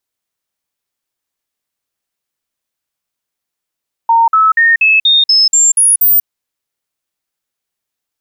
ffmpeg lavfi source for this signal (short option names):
-f lavfi -i "aevalsrc='0.531*clip(min(mod(t,0.24),0.19-mod(t,0.24))/0.005,0,1)*sin(2*PI*919*pow(2,floor(t/0.24)/2)*mod(t,0.24))':d=2.16:s=44100"